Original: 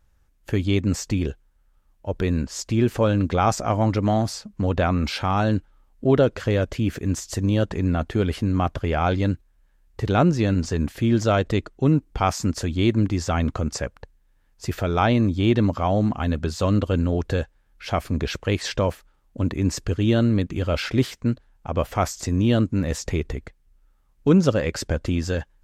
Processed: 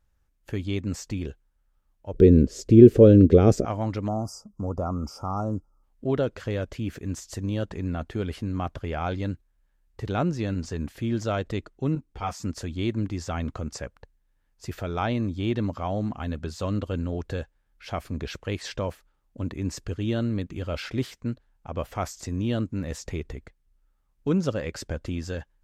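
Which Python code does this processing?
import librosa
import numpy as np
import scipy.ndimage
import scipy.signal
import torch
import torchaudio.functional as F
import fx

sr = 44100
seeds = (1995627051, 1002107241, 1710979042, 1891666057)

y = fx.low_shelf_res(x, sr, hz=620.0, db=12.5, q=3.0, at=(2.14, 3.65))
y = fx.spec_box(y, sr, start_s=4.08, length_s=1.75, low_hz=1400.0, high_hz=4700.0, gain_db=-28)
y = fx.ensemble(y, sr, at=(11.95, 12.44))
y = F.gain(torch.from_numpy(y), -7.5).numpy()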